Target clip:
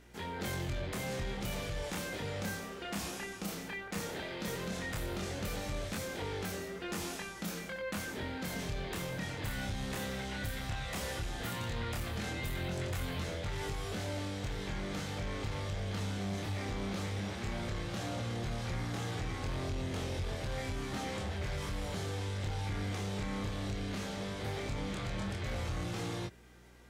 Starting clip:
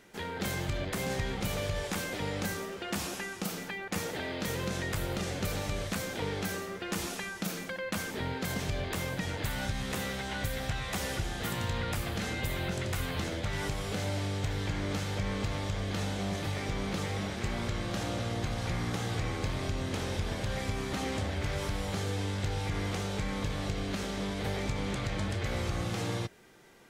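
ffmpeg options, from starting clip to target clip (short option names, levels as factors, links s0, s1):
-af "flanger=delay=22.5:depth=7.8:speed=0.15,asoftclip=type=tanh:threshold=0.0355,aeval=exprs='val(0)+0.00112*(sin(2*PI*60*n/s)+sin(2*PI*2*60*n/s)/2+sin(2*PI*3*60*n/s)/3+sin(2*PI*4*60*n/s)/4+sin(2*PI*5*60*n/s)/5)':c=same"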